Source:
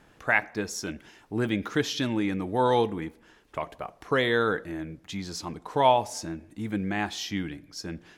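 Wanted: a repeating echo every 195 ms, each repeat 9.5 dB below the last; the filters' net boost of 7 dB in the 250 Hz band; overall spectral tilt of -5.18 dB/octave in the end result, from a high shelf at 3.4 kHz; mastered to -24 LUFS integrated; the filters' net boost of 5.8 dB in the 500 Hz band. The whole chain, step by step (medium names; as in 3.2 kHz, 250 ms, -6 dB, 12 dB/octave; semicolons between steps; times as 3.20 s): peaking EQ 250 Hz +7.5 dB; peaking EQ 500 Hz +5 dB; treble shelf 3.4 kHz -5.5 dB; feedback delay 195 ms, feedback 33%, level -9.5 dB; trim -0.5 dB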